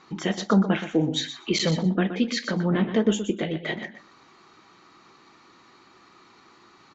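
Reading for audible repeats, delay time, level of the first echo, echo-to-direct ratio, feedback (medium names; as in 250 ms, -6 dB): 2, 122 ms, -10.5 dB, -10.5 dB, 16%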